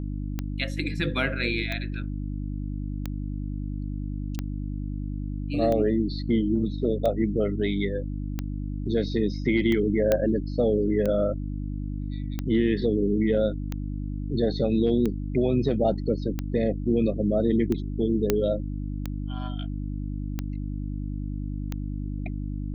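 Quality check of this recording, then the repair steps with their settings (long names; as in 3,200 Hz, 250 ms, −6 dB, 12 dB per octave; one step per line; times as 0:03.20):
mains hum 50 Hz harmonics 6 −31 dBFS
scratch tick 45 rpm −16 dBFS
0:10.12: click −9 dBFS
0:18.30: click −7 dBFS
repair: click removal
hum removal 50 Hz, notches 6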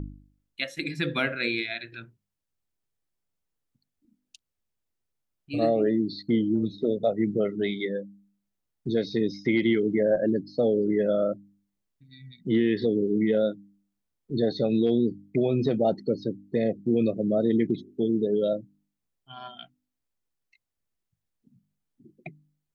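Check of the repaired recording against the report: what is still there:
none of them is left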